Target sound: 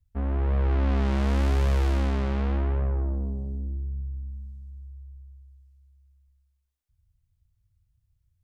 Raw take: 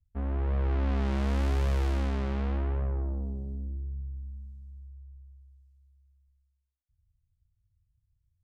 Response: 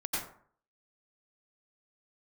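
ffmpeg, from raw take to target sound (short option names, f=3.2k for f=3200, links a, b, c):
-filter_complex "[0:a]asplit=2[a][b];[1:a]atrim=start_sample=2205,adelay=137[c];[b][c]afir=irnorm=-1:irlink=0,volume=-25dB[d];[a][d]amix=inputs=2:normalize=0,volume=4dB"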